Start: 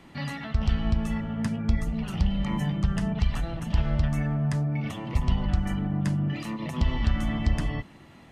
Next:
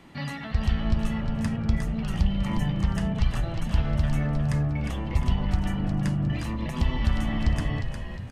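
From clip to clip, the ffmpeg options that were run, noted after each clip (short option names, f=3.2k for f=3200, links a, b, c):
-filter_complex "[0:a]asplit=6[a][b][c][d][e][f];[b]adelay=357,afreqshift=-77,volume=-6.5dB[g];[c]adelay=714,afreqshift=-154,volume=-14.2dB[h];[d]adelay=1071,afreqshift=-231,volume=-22dB[i];[e]adelay=1428,afreqshift=-308,volume=-29.7dB[j];[f]adelay=1785,afreqshift=-385,volume=-37.5dB[k];[a][g][h][i][j][k]amix=inputs=6:normalize=0"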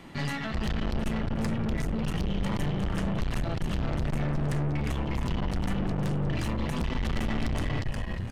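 -af "aeval=exprs='(tanh(44.7*val(0)+0.6)-tanh(0.6))/44.7':c=same,volume=6.5dB"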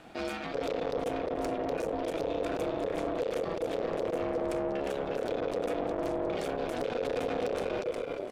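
-af "aeval=exprs='val(0)*sin(2*PI*490*n/s)':c=same,volume=-1.5dB"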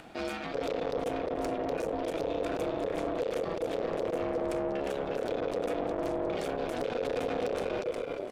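-af "acompressor=mode=upward:threshold=-47dB:ratio=2.5"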